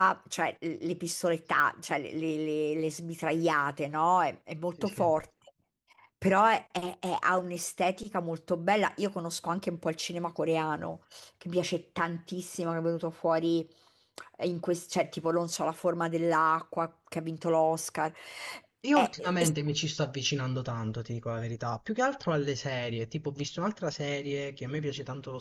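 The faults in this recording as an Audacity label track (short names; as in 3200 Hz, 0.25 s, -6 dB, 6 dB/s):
1.600000	1.600000	pop -17 dBFS
7.630000	7.630000	pop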